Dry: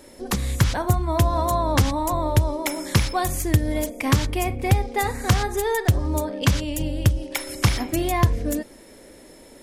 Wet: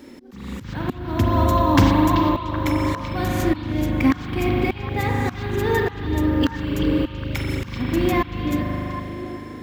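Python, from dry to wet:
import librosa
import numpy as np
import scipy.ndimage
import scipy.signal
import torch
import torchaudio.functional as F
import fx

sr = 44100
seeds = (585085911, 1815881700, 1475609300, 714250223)

p1 = fx.highpass(x, sr, hz=67.0, slope=6)
p2 = fx.rev_spring(p1, sr, rt60_s=2.9, pass_ms=(39,), chirp_ms=35, drr_db=0.5)
p3 = fx.auto_swell(p2, sr, attack_ms=501.0)
p4 = fx.sample_hold(p3, sr, seeds[0], rate_hz=13000.0, jitter_pct=0)
p5 = p3 + (p4 * 10.0 ** (-9.0 / 20.0))
p6 = fx.graphic_eq_15(p5, sr, hz=(250, 630, 10000), db=(10, -8, -12))
y = p6 + fx.echo_stepped(p6, sr, ms=384, hz=3300.0, octaves=-1.4, feedback_pct=70, wet_db=-5.5, dry=0)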